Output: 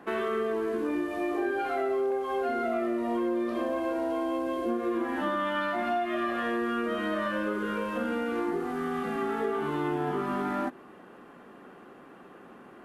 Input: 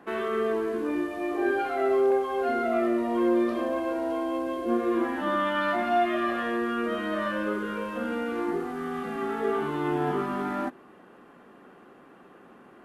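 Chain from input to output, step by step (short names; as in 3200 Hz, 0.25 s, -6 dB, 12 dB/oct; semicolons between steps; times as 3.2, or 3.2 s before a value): compressor, threshold -28 dBFS, peak gain reduction 9 dB; gain +2 dB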